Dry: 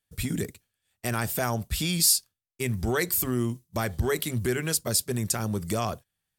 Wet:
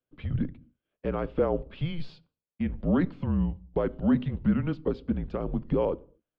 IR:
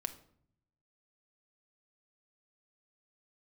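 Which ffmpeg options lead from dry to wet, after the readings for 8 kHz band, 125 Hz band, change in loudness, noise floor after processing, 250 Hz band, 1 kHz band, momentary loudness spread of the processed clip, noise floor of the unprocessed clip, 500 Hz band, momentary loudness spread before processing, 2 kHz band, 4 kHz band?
below −40 dB, −1.0 dB, −2.5 dB, below −85 dBFS, +3.5 dB, −5.0 dB, 8 LU, −84 dBFS, +1.0 dB, 11 LU, −11.0 dB, −19.0 dB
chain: -filter_complex "[0:a]highpass=frequency=190:width_type=q:width=0.5412,highpass=frequency=190:width_type=q:width=1.307,lowpass=frequency=3100:width_type=q:width=0.5176,lowpass=frequency=3100:width_type=q:width=0.7071,lowpass=frequency=3100:width_type=q:width=1.932,afreqshift=-170,equalizer=frequency=125:width_type=o:width=1:gain=8,equalizer=frequency=250:width_type=o:width=1:gain=6,equalizer=frequency=500:width_type=o:width=1:gain=10,equalizer=frequency=2000:width_type=o:width=1:gain=-8,asplit=2[link_01][link_02];[1:a]atrim=start_sample=2205,afade=type=out:start_time=0.31:duration=0.01,atrim=end_sample=14112,lowshelf=frequency=190:gain=10.5[link_03];[link_02][link_03]afir=irnorm=-1:irlink=0,volume=-11dB[link_04];[link_01][link_04]amix=inputs=2:normalize=0,volume=-6.5dB"

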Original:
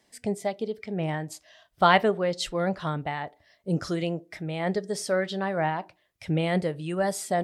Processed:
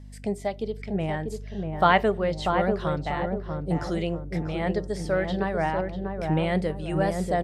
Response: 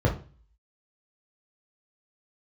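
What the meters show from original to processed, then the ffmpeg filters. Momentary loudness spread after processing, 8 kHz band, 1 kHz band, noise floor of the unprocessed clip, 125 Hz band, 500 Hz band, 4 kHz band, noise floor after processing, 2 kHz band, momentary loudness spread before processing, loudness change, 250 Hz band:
9 LU, −8.5 dB, +1.0 dB, −68 dBFS, +2.5 dB, +1.5 dB, −3.0 dB, −40 dBFS, 0.0 dB, 12 LU, +1.0 dB, +2.0 dB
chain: -filter_complex "[0:a]aeval=exprs='val(0)+0.00794*(sin(2*PI*50*n/s)+sin(2*PI*2*50*n/s)/2+sin(2*PI*3*50*n/s)/3+sin(2*PI*4*50*n/s)/4+sin(2*PI*5*50*n/s)/5)':channel_layout=same,asplit=2[link_01][link_02];[link_02]adelay=641,lowpass=frequency=800:poles=1,volume=-3dB,asplit=2[link_03][link_04];[link_04]adelay=641,lowpass=frequency=800:poles=1,volume=0.51,asplit=2[link_05][link_06];[link_06]adelay=641,lowpass=frequency=800:poles=1,volume=0.51,asplit=2[link_07][link_08];[link_08]adelay=641,lowpass=frequency=800:poles=1,volume=0.51,asplit=2[link_09][link_10];[link_10]adelay=641,lowpass=frequency=800:poles=1,volume=0.51,asplit=2[link_11][link_12];[link_12]adelay=641,lowpass=frequency=800:poles=1,volume=0.51,asplit=2[link_13][link_14];[link_14]adelay=641,lowpass=frequency=800:poles=1,volume=0.51[link_15];[link_03][link_05][link_07][link_09][link_11][link_13][link_15]amix=inputs=7:normalize=0[link_16];[link_01][link_16]amix=inputs=2:normalize=0,acrossover=split=3400[link_17][link_18];[link_18]acompressor=threshold=-44dB:ratio=4:attack=1:release=60[link_19];[link_17][link_19]amix=inputs=2:normalize=0,aresample=32000,aresample=44100"

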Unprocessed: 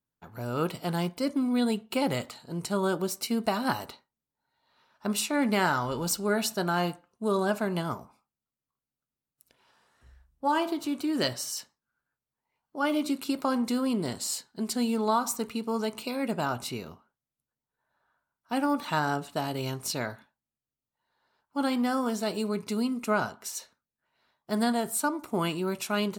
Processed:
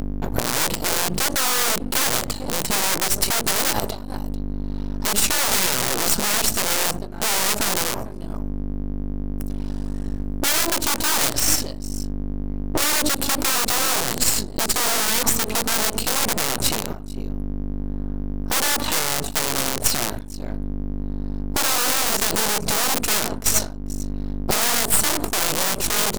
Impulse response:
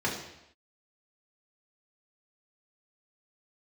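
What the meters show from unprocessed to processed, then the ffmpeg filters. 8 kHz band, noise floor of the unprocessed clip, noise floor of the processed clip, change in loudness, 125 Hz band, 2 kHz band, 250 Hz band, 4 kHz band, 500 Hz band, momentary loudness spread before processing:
+17.5 dB, below −85 dBFS, −30 dBFS, +8.5 dB, +7.0 dB, +10.0 dB, 0.0 dB, +14.5 dB, +2.5 dB, 8 LU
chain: -filter_complex "[0:a]firequalizer=gain_entry='entry(110,0);entry(1300,-15);entry(12000,-17)':delay=0.05:min_phase=1,aecho=1:1:442:0.0708,aeval=exprs='val(0)+0.00794*(sin(2*PI*50*n/s)+sin(2*PI*2*50*n/s)/2+sin(2*PI*3*50*n/s)/3+sin(2*PI*4*50*n/s)/4+sin(2*PI*5*50*n/s)/5)':channel_layout=same,bandreject=frequency=60:width_type=h:width=6,bandreject=frequency=120:width_type=h:width=6,bandreject=frequency=180:width_type=h:width=6,asplit=2[link_01][link_02];[link_02]acompressor=threshold=-34dB:ratio=6,volume=-3dB[link_03];[link_01][link_03]amix=inputs=2:normalize=0,aeval=exprs='(mod(23.7*val(0)+1,2)-1)/23.7':channel_layout=same,bass=frequency=250:gain=-9,treble=frequency=4000:gain=11,agate=range=-33dB:threshold=-39dB:ratio=3:detection=peak,aeval=exprs='max(val(0),0)':channel_layout=same,acompressor=mode=upward:threshold=-36dB:ratio=2.5,alimiter=level_in=24.5dB:limit=-1dB:release=50:level=0:latency=1,volume=-1dB"

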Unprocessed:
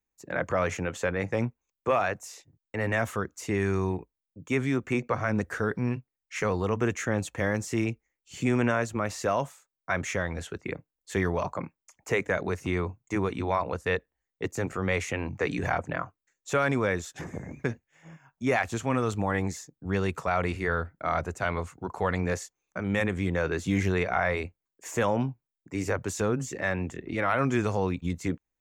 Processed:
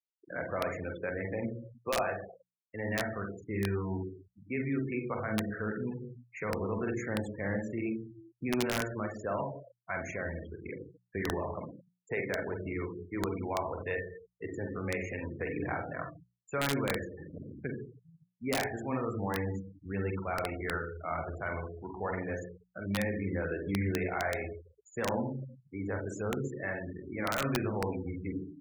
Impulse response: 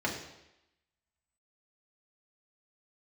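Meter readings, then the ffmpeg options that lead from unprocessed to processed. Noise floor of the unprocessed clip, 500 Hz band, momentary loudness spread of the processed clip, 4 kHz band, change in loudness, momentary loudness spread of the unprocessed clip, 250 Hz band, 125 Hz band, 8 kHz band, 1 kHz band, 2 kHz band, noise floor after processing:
below −85 dBFS, −6.0 dB, 11 LU, −2.0 dB, −6.0 dB, 11 LU, −5.0 dB, −6.5 dB, −7.5 dB, −7.0 dB, −6.5 dB, −79 dBFS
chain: -filter_complex "[0:a]asplit=2[link_01][link_02];[1:a]atrim=start_sample=2205,adelay=44[link_03];[link_02][link_03]afir=irnorm=-1:irlink=0,volume=-10dB[link_04];[link_01][link_04]amix=inputs=2:normalize=0,afftfilt=real='re*gte(hypot(re,im),0.0398)':imag='im*gte(hypot(re,im),0.0398)':win_size=1024:overlap=0.75,aeval=exprs='(mod(4.47*val(0)+1,2)-1)/4.47':channel_layout=same,bandreject=frequency=60:width_type=h:width=6,bandreject=frequency=120:width_type=h:width=6,bandreject=frequency=180:width_type=h:width=6,volume=-8.5dB"

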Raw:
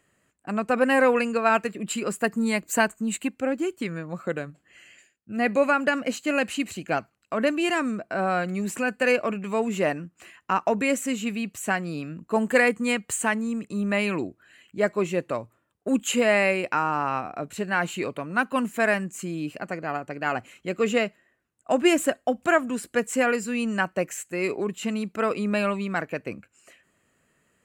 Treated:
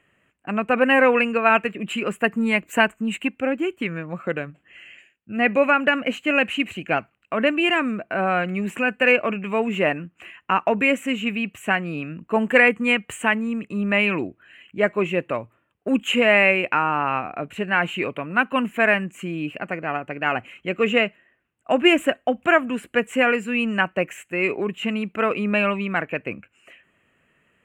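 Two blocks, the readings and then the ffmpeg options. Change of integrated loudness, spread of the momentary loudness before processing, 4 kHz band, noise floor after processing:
+4.0 dB, 11 LU, +6.5 dB, −67 dBFS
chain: -af "highshelf=frequency=3600:width_type=q:width=3:gain=-9.5,volume=2.5dB"

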